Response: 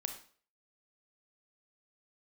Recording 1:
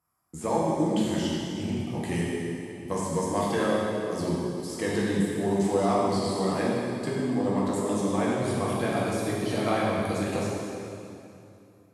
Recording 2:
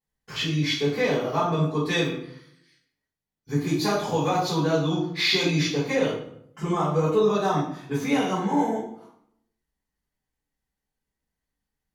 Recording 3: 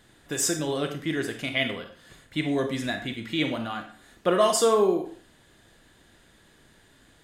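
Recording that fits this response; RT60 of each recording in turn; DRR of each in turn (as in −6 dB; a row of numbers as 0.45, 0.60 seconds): 3; 2.8, 0.70, 0.45 seconds; −6.0, −11.0, 5.5 decibels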